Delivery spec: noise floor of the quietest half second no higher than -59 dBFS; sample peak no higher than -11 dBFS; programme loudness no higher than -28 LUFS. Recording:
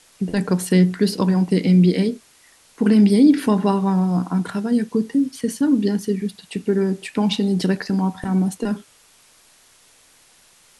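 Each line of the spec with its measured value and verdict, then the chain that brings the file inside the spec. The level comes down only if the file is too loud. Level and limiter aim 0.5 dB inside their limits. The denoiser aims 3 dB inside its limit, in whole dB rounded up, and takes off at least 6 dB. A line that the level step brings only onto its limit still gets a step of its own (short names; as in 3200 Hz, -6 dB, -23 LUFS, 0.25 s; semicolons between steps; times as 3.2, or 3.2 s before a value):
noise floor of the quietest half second -54 dBFS: fail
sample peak -4.5 dBFS: fail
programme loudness -19.5 LUFS: fail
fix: gain -9 dB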